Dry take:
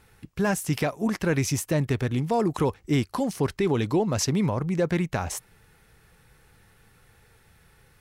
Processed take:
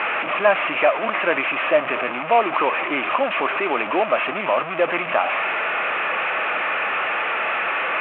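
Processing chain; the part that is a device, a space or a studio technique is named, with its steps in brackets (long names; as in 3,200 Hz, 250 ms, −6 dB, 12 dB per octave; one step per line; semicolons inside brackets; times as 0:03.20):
0:02.75–0:03.76: low-pass filter 6,400 Hz 12 dB per octave
digital answering machine (band-pass filter 330–3,400 Hz; linear delta modulator 16 kbit/s, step −26.5 dBFS; loudspeaker in its box 370–3,200 Hz, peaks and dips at 430 Hz −6 dB, 630 Hz +9 dB, 1,200 Hz +9 dB, 2,500 Hz +9 dB)
level +6.5 dB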